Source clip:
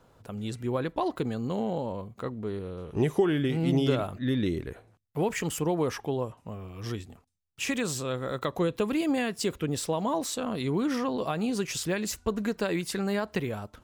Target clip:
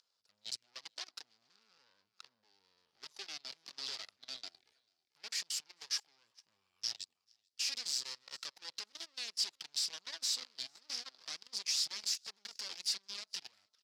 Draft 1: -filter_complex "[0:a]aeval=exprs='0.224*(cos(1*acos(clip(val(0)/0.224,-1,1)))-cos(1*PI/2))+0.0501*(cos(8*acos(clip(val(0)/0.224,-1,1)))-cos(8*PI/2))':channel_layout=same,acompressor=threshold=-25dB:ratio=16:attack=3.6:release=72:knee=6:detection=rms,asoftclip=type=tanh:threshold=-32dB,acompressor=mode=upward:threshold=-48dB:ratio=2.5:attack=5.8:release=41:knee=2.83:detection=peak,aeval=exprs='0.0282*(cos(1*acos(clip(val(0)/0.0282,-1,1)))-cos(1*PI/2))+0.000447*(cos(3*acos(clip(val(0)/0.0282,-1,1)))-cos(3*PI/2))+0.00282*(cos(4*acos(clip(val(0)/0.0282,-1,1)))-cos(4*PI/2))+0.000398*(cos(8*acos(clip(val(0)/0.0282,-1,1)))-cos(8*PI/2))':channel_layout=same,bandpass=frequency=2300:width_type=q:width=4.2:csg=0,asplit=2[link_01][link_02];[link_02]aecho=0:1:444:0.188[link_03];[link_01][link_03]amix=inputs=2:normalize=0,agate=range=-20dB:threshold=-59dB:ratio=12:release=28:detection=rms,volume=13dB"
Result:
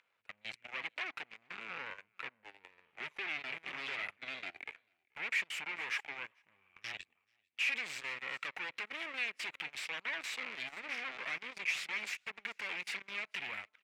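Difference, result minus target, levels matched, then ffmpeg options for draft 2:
2,000 Hz band +15.5 dB; soft clipping: distortion +8 dB
-filter_complex "[0:a]aeval=exprs='0.224*(cos(1*acos(clip(val(0)/0.224,-1,1)))-cos(1*PI/2))+0.0501*(cos(8*acos(clip(val(0)/0.224,-1,1)))-cos(8*PI/2))':channel_layout=same,acompressor=threshold=-25dB:ratio=16:attack=3.6:release=72:knee=6:detection=rms,asoftclip=type=tanh:threshold=-25dB,acompressor=mode=upward:threshold=-48dB:ratio=2.5:attack=5.8:release=41:knee=2.83:detection=peak,aeval=exprs='0.0282*(cos(1*acos(clip(val(0)/0.0282,-1,1)))-cos(1*PI/2))+0.000447*(cos(3*acos(clip(val(0)/0.0282,-1,1)))-cos(3*PI/2))+0.00282*(cos(4*acos(clip(val(0)/0.0282,-1,1)))-cos(4*PI/2))+0.000398*(cos(8*acos(clip(val(0)/0.0282,-1,1)))-cos(8*PI/2))':channel_layout=same,bandpass=frequency=4900:width_type=q:width=4.2:csg=0,asplit=2[link_01][link_02];[link_02]aecho=0:1:444:0.188[link_03];[link_01][link_03]amix=inputs=2:normalize=0,agate=range=-20dB:threshold=-59dB:ratio=12:release=28:detection=rms,volume=13dB"

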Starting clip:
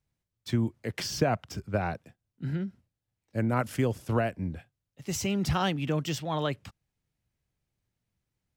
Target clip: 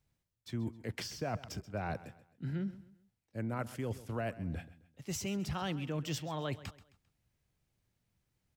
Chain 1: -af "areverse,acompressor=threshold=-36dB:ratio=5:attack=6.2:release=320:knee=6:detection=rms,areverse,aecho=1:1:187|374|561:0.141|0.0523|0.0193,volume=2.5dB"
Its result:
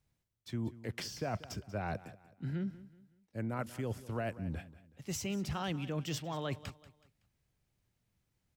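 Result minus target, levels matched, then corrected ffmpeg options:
echo 55 ms late
-af "areverse,acompressor=threshold=-36dB:ratio=5:attack=6.2:release=320:knee=6:detection=rms,areverse,aecho=1:1:132|264|396:0.141|0.0523|0.0193,volume=2.5dB"

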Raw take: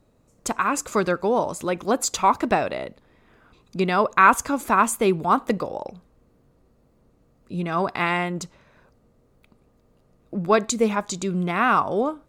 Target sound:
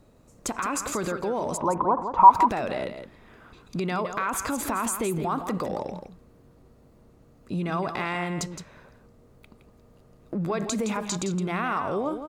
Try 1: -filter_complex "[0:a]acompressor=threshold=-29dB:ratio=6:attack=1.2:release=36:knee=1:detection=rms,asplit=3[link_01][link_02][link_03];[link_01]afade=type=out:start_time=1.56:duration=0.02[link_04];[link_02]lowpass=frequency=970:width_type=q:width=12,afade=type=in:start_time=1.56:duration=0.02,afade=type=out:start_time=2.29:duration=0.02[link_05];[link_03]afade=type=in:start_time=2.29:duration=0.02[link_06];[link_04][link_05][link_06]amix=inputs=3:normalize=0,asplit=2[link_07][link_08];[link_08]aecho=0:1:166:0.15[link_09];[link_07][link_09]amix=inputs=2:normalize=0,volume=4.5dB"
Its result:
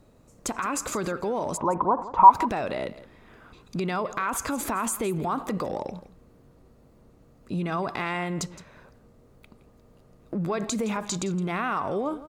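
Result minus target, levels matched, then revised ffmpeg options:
echo-to-direct −7.5 dB
-filter_complex "[0:a]acompressor=threshold=-29dB:ratio=6:attack=1.2:release=36:knee=1:detection=rms,asplit=3[link_01][link_02][link_03];[link_01]afade=type=out:start_time=1.56:duration=0.02[link_04];[link_02]lowpass=frequency=970:width_type=q:width=12,afade=type=in:start_time=1.56:duration=0.02,afade=type=out:start_time=2.29:duration=0.02[link_05];[link_03]afade=type=in:start_time=2.29:duration=0.02[link_06];[link_04][link_05][link_06]amix=inputs=3:normalize=0,asplit=2[link_07][link_08];[link_08]aecho=0:1:166:0.355[link_09];[link_07][link_09]amix=inputs=2:normalize=0,volume=4.5dB"

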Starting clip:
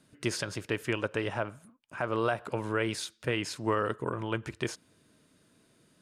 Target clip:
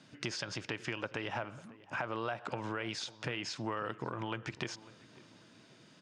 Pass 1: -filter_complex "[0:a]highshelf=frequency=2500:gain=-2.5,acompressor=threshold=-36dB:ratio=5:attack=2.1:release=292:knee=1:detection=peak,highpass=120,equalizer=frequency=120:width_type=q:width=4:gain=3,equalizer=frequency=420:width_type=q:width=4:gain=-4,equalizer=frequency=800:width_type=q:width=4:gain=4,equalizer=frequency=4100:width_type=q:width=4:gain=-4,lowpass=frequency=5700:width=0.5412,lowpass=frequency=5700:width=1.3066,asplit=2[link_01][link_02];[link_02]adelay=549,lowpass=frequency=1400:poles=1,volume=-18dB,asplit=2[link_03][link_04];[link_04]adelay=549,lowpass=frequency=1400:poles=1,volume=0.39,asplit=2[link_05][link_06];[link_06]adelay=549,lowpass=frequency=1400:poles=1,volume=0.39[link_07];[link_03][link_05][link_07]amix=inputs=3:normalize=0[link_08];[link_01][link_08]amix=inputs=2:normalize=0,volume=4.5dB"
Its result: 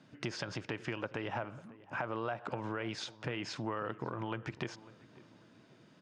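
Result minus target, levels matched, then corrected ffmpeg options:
4,000 Hz band −3.0 dB
-filter_complex "[0:a]highshelf=frequency=2500:gain=8,acompressor=threshold=-36dB:ratio=5:attack=2.1:release=292:knee=1:detection=peak,highpass=120,equalizer=frequency=120:width_type=q:width=4:gain=3,equalizer=frequency=420:width_type=q:width=4:gain=-4,equalizer=frequency=800:width_type=q:width=4:gain=4,equalizer=frequency=4100:width_type=q:width=4:gain=-4,lowpass=frequency=5700:width=0.5412,lowpass=frequency=5700:width=1.3066,asplit=2[link_01][link_02];[link_02]adelay=549,lowpass=frequency=1400:poles=1,volume=-18dB,asplit=2[link_03][link_04];[link_04]adelay=549,lowpass=frequency=1400:poles=1,volume=0.39,asplit=2[link_05][link_06];[link_06]adelay=549,lowpass=frequency=1400:poles=1,volume=0.39[link_07];[link_03][link_05][link_07]amix=inputs=3:normalize=0[link_08];[link_01][link_08]amix=inputs=2:normalize=0,volume=4.5dB"

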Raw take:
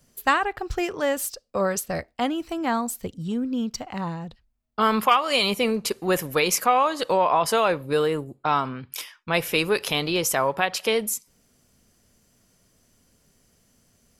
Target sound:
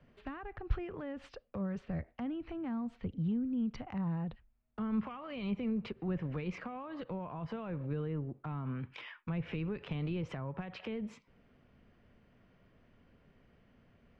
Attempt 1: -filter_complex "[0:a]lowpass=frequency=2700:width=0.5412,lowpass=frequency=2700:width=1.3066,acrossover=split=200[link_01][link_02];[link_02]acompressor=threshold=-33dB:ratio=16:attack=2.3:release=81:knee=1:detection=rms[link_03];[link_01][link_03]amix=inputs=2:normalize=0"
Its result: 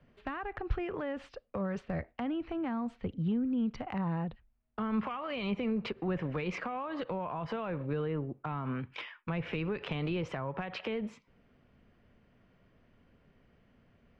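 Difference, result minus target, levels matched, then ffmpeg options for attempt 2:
downward compressor: peak gain reduction −8 dB
-filter_complex "[0:a]lowpass=frequency=2700:width=0.5412,lowpass=frequency=2700:width=1.3066,acrossover=split=200[link_01][link_02];[link_02]acompressor=threshold=-41.5dB:ratio=16:attack=2.3:release=81:knee=1:detection=rms[link_03];[link_01][link_03]amix=inputs=2:normalize=0"

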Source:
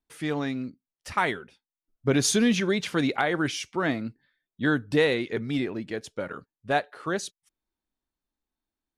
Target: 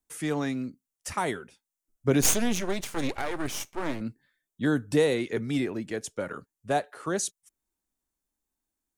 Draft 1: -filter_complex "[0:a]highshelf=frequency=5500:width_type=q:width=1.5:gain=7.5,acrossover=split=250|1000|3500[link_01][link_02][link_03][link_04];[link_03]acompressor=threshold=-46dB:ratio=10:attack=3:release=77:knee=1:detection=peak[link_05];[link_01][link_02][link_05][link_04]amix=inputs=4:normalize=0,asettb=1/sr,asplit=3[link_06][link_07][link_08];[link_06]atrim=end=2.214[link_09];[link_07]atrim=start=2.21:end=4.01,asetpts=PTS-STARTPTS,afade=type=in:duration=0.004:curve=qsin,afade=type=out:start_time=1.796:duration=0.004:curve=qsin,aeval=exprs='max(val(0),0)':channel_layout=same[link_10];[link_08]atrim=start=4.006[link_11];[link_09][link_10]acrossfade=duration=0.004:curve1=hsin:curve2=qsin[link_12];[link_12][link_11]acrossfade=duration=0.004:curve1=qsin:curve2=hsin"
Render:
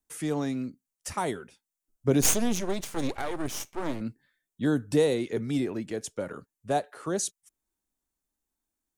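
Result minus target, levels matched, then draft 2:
downward compressor: peak gain reduction +10 dB
-filter_complex "[0:a]highshelf=frequency=5500:width_type=q:width=1.5:gain=7.5,acrossover=split=250|1000|3500[link_01][link_02][link_03][link_04];[link_03]acompressor=threshold=-35dB:ratio=10:attack=3:release=77:knee=1:detection=peak[link_05];[link_01][link_02][link_05][link_04]amix=inputs=4:normalize=0,asettb=1/sr,asplit=3[link_06][link_07][link_08];[link_06]atrim=end=2.214[link_09];[link_07]atrim=start=2.21:end=4.01,asetpts=PTS-STARTPTS,afade=type=in:duration=0.004:curve=qsin,afade=type=out:start_time=1.796:duration=0.004:curve=qsin,aeval=exprs='max(val(0),0)':channel_layout=same[link_10];[link_08]atrim=start=4.006[link_11];[link_09][link_10]acrossfade=duration=0.004:curve1=hsin:curve2=qsin[link_12];[link_12][link_11]acrossfade=duration=0.004:curve1=qsin:curve2=hsin"

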